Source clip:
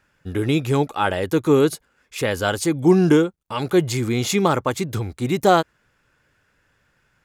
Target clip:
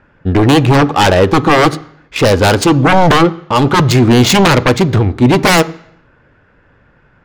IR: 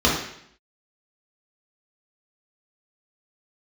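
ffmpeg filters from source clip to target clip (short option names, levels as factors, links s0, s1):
-filter_complex "[0:a]adynamicsmooth=sensitivity=3:basefreq=1800,aeval=exprs='0.708*sin(PI/2*5.62*val(0)/0.708)':c=same,asplit=2[s0][s1];[1:a]atrim=start_sample=2205[s2];[s1][s2]afir=irnorm=-1:irlink=0,volume=0.02[s3];[s0][s3]amix=inputs=2:normalize=0,volume=0.794"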